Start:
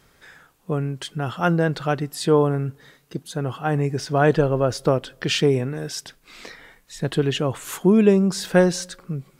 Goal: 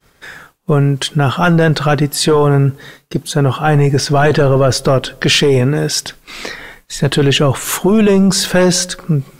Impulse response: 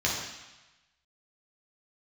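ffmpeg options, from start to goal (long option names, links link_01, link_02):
-af "agate=range=-33dB:threshold=-49dB:ratio=3:detection=peak,apsyclip=20.5dB,volume=-6dB"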